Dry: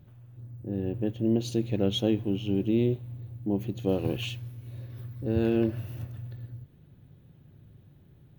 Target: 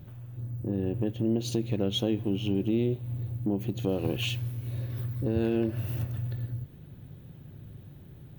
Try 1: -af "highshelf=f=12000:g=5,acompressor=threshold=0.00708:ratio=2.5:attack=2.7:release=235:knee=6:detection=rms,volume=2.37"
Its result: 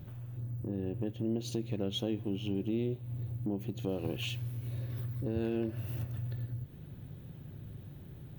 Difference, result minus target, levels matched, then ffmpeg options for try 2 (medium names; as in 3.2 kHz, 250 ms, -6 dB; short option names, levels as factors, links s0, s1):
compression: peak gain reduction +6.5 dB
-af "highshelf=f=12000:g=5,acompressor=threshold=0.0237:ratio=2.5:attack=2.7:release=235:knee=6:detection=rms,volume=2.37"